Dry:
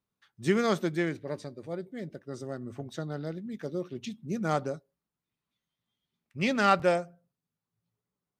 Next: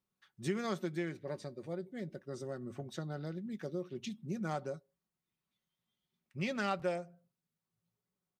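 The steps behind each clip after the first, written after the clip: comb 5.4 ms, depth 36%; compression 2:1, threshold -35 dBFS, peak gain reduction 10 dB; trim -3 dB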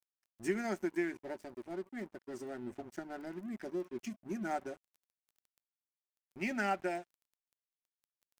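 crackle 14 per s -50 dBFS; static phaser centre 750 Hz, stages 8; crossover distortion -57.5 dBFS; trim +5 dB

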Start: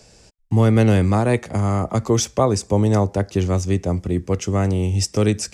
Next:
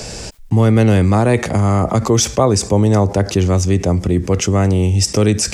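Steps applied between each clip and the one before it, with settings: level flattener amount 50%; trim +2.5 dB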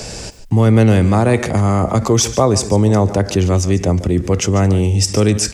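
delay 144 ms -15 dB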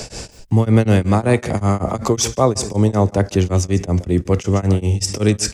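tremolo of two beating tones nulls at 5.3 Hz

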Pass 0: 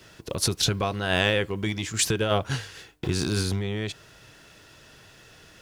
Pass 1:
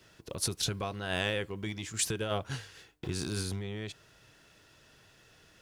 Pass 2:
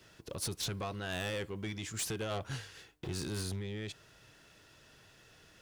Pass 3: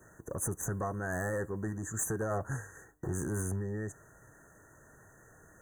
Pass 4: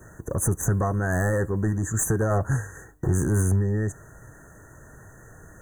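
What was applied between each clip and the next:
dynamic bell 9.6 kHz, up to +5 dB, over -44 dBFS, Q 1.3; trim -9 dB
saturation -32 dBFS, distortion -10 dB
FFT band-reject 1.9–6 kHz; trim +4 dB
bass shelf 150 Hz +9 dB; trim +8 dB

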